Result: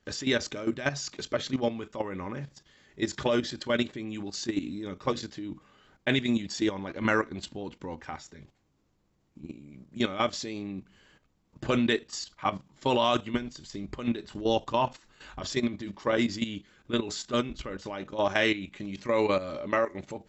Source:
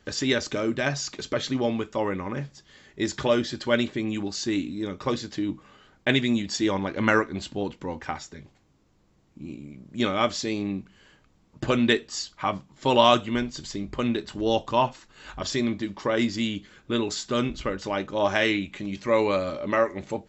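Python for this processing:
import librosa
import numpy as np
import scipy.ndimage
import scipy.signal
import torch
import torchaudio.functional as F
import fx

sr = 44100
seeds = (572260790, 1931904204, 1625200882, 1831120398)

y = fx.level_steps(x, sr, step_db=12)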